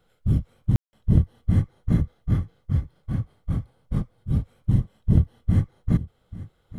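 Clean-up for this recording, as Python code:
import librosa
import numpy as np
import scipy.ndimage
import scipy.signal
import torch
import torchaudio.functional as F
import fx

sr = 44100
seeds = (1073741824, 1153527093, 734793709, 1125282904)

y = fx.fix_declip(x, sr, threshold_db=-7.0)
y = fx.fix_ambience(y, sr, seeds[0], print_start_s=6.19, print_end_s=6.69, start_s=0.76, end_s=0.93)
y = fx.fix_echo_inverse(y, sr, delay_ms=837, level_db=-17.0)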